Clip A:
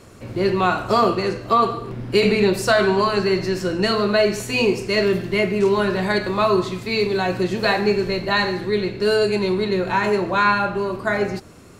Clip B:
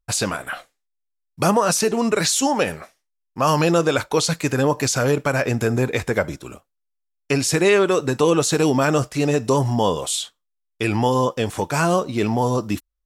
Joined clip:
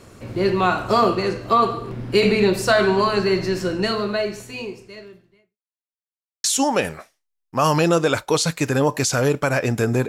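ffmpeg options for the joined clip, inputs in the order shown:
-filter_complex "[0:a]apad=whole_dur=10.08,atrim=end=10.08,asplit=2[a][b];[a]atrim=end=5.58,asetpts=PTS-STARTPTS,afade=t=out:st=3.63:d=1.95:c=qua[c];[b]atrim=start=5.58:end=6.44,asetpts=PTS-STARTPTS,volume=0[d];[1:a]atrim=start=2.27:end=5.91,asetpts=PTS-STARTPTS,afade=t=in:d=0.004:c=hsin[e];[c][d][e]concat=n=3:v=0:a=1"

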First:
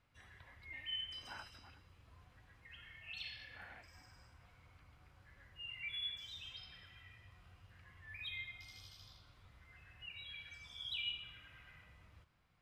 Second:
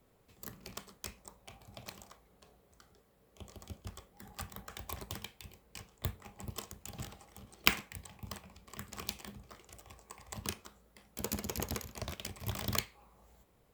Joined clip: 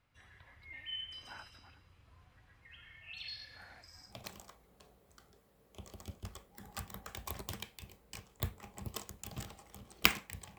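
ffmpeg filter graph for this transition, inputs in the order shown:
-filter_complex "[0:a]asettb=1/sr,asplit=3[a][b][c];[a]atrim=end=3.284[d];[b]atrim=start=3.28:end=4.15,asetpts=PTS-STARTPTS,afade=t=in:d=0.004:c=qsin,afade=t=out:st=0.866:d=0.004:c=qsin,highshelf=f=3.6k:t=q:w=3:g=6[e];[c]atrim=start=4.146[f];[d][e]acrossfade=d=0.004:c1=hsin:c2=qsin[g];[g][f]acrossfade=d=0.004:c1=qsin:c2=hsin,apad=whole_dur=10.58,atrim=end=10.58,atrim=end=4.15,asetpts=PTS-STARTPTS[h];[1:a]atrim=start=1.67:end=8.2,asetpts=PTS-STARTPTS[i];[h][i]acrossfade=d=0.1:c1=tri:c2=tri"

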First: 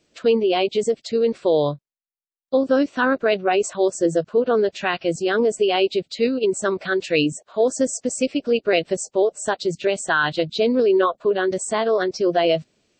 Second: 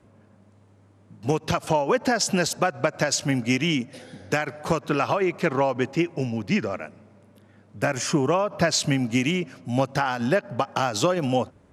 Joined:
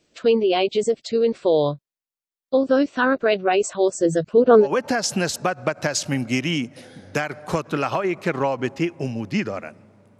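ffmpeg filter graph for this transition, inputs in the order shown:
-filter_complex "[0:a]asplit=3[a][b][c];[a]afade=t=out:st=4.08:d=0.02[d];[b]aphaser=in_gain=1:out_gain=1:delay=1.7:decay=0.55:speed=0.44:type=triangular,afade=t=in:st=4.08:d=0.02,afade=t=out:st=4.68:d=0.02[e];[c]afade=t=in:st=4.68:d=0.02[f];[d][e][f]amix=inputs=3:normalize=0,apad=whole_dur=10.19,atrim=end=10.19,atrim=end=4.68,asetpts=PTS-STARTPTS[g];[1:a]atrim=start=1.77:end=7.36,asetpts=PTS-STARTPTS[h];[g][h]acrossfade=d=0.08:c1=tri:c2=tri"

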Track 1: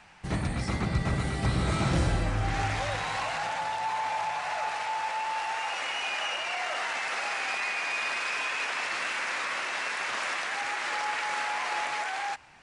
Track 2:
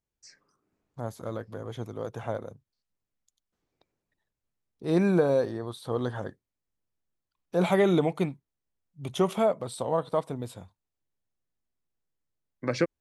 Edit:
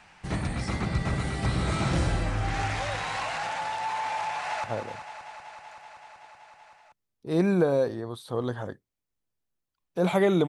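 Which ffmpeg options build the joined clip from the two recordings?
-filter_complex "[0:a]apad=whole_dur=10.48,atrim=end=10.48,atrim=end=4.642[a];[1:a]atrim=start=2.208:end=8.05[b];[a][b]acrossfade=d=0.004:c1=hsin:c2=hsin,asplit=2[c][d];[d]afade=t=in:st=4.3:d=0.01,afade=t=out:st=4.64:d=0.01,aecho=0:1:190|380|570|760|950|1140|1330|1520|1710|1900|2090|2280:0.334965|0.284721|0.242013|0.205711|0.174854|0.148626|0.126332|0.107382|0.0912749|0.0775837|0.0659461|0.0560542[e];[c][e]amix=inputs=2:normalize=0"

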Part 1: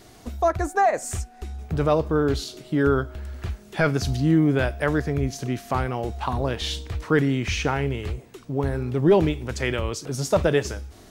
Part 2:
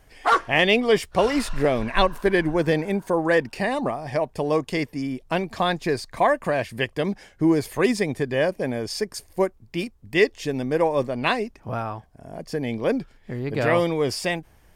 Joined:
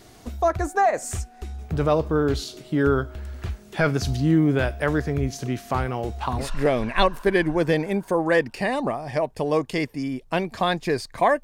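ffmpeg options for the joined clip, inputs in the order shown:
-filter_complex "[0:a]apad=whole_dur=11.43,atrim=end=11.43,atrim=end=6.49,asetpts=PTS-STARTPTS[a];[1:a]atrim=start=1.36:end=6.42,asetpts=PTS-STARTPTS[b];[a][b]acrossfade=d=0.12:c1=tri:c2=tri"

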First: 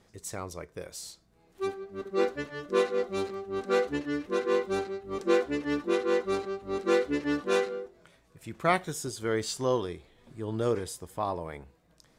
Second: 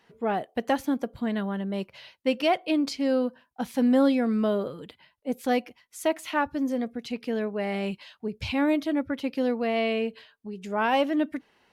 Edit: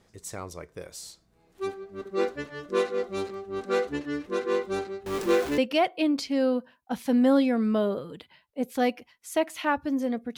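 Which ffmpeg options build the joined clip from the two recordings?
-filter_complex "[0:a]asettb=1/sr,asplit=3[a][b][c];[a]atrim=end=5.064[d];[b]atrim=start=5.06:end=5.58,asetpts=PTS-STARTPTS,afade=t=in:d=0.004:c=qsin,afade=t=out:st=0.516:d=0.004:c=qsin,aeval=exprs='val(0)+0.5*0.0316*sgn(val(0))':c=same[e];[c]atrim=start=5.576[f];[d][e]acrossfade=d=0.004:c1=hsin:c2=qsin[g];[g][f]acrossfade=d=0.004:c1=qsin:c2=hsin,apad=whole_dur=10.37,atrim=end=10.37,atrim=end=5.582[h];[1:a]atrim=start=2.268:end=7.06[i];[h][i]acrossfade=d=0.004:c1=hsin:c2=hsin"

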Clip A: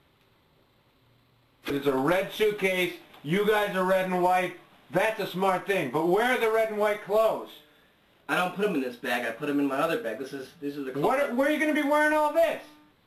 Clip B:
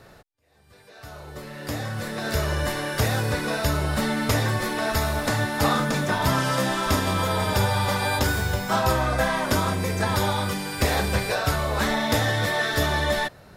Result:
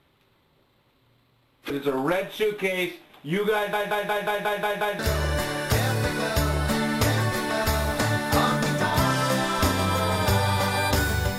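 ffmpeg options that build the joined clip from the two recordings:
-filter_complex "[0:a]apad=whole_dur=11.38,atrim=end=11.38,asplit=8[a][b][c][d][e][f][g][h];[a]atrim=end=3.732[i];[b]atrim=start=3.548:end=3.732[j];[c]atrim=start=3.548:end=3.732[k];[d]atrim=start=3.548:end=3.732[l];[e]atrim=start=3.548:end=3.732[m];[f]atrim=start=3.548:end=3.732[n];[g]atrim=start=3.548:end=3.732[o];[h]atrim=start=3.548:end=3.732[p];[1:a]atrim=start=2.268:end=8.66[q];[i][j]acrossfade=d=0.004:c1=hsin:c2=hsin[r];[r][k]acrossfade=d=0.004:c1=hsin:c2=hsin[s];[s][l]acrossfade=d=0.004:c1=hsin:c2=hsin[t];[t][m]acrossfade=d=0.004:c1=hsin:c2=hsin[u];[u][n]acrossfade=d=0.004:c1=hsin:c2=hsin[v];[v][o]acrossfade=d=0.004:c1=hsin:c2=hsin[w];[w][p]acrossfade=d=0.004:c1=hsin:c2=hsin[x];[x][q]acrossfade=d=0.004:c1=hsin:c2=hsin"

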